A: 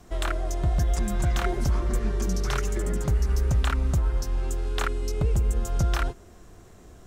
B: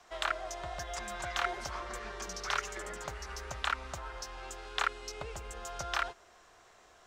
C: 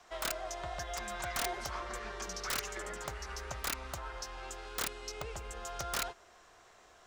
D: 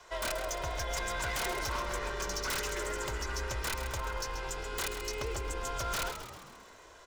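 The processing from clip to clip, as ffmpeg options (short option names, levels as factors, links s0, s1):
-filter_complex "[0:a]acrossover=split=600 6400:gain=0.0631 1 0.2[s0][s1][s2];[s0][s1][s2]amix=inputs=3:normalize=0"
-af "aeval=exprs='(mod(21.1*val(0)+1,2)-1)/21.1':c=same"
-filter_complex "[0:a]aecho=1:1:2:0.59,aeval=exprs='0.0237*(abs(mod(val(0)/0.0237+3,4)-2)-1)':c=same,asplit=7[s0][s1][s2][s3][s4][s5][s6];[s1]adelay=133,afreqshift=-61,volume=0.335[s7];[s2]adelay=266,afreqshift=-122,volume=0.184[s8];[s3]adelay=399,afreqshift=-183,volume=0.101[s9];[s4]adelay=532,afreqshift=-244,volume=0.0556[s10];[s5]adelay=665,afreqshift=-305,volume=0.0305[s11];[s6]adelay=798,afreqshift=-366,volume=0.0168[s12];[s0][s7][s8][s9][s10][s11][s12]amix=inputs=7:normalize=0,volume=1.58"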